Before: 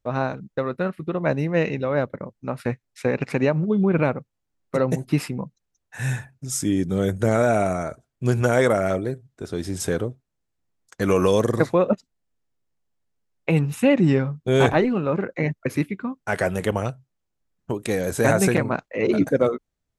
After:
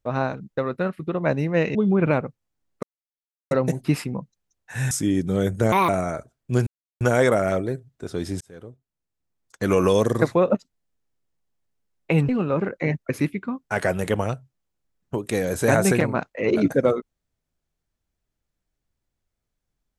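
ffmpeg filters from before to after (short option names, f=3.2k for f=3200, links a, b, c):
-filter_complex "[0:a]asplit=9[a][b][c][d][e][f][g][h][i];[a]atrim=end=1.752[j];[b]atrim=start=3.668:end=4.75,asetpts=PTS-STARTPTS,afade=t=out:st=1.078:d=0.004:c=hsin,apad=pad_dur=0.68[k];[c]atrim=start=4.75:end=6.152,asetpts=PTS-STARTPTS,afade=t=in:d=0.004:c=hsin[l];[d]atrim=start=6.528:end=7.344[m];[e]atrim=start=7.34:end=7.61,asetpts=PTS-STARTPTS,asetrate=71442,aresample=44100[n];[f]atrim=start=7.606:end=8.39,asetpts=PTS-STARTPTS,afade=t=out:st=0.78:d=0.004:c=hsin,apad=pad_dur=0.34[o];[g]atrim=start=8.39:end=9.79,asetpts=PTS-STARTPTS,afade=t=in:d=0.004:c=hsin,afade=t=out:st=1.396:d=0.004:c=hsin[p];[h]atrim=start=9.79:end=13.672,asetpts=PTS-STARTPTS,afade=t=in:d=1.31[q];[i]atrim=start=14.848[r];[k][l]concat=n=2:v=0:a=1[s];[j][s]acrossfade=d=0.004:c1=hsin:c2=hsin[t];[t][m]acrossfade=d=0.004:c1=hsin:c2=hsin[u];[u][n]acrossfade=d=0.004:c1=hsin:c2=hsin[v];[o][p][q]concat=n=3:v=0:a=1[w];[v][w]acrossfade=d=0.004:c1=hsin:c2=hsin[x];[x][r]acrossfade=d=0.004:c1=hsin:c2=hsin"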